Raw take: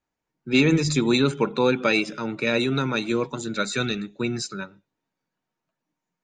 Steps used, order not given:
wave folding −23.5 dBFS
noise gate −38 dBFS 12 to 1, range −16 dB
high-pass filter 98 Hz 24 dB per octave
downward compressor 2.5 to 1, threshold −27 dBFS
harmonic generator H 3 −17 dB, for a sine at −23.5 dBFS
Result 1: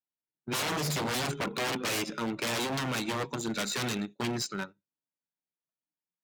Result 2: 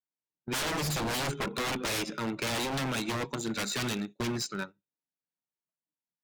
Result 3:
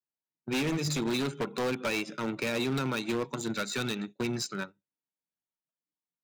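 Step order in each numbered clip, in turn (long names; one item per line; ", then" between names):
noise gate, then wave folding, then high-pass filter, then harmonic generator, then downward compressor
high-pass filter, then wave folding, then downward compressor, then noise gate, then harmonic generator
downward compressor, then noise gate, then harmonic generator, then high-pass filter, then wave folding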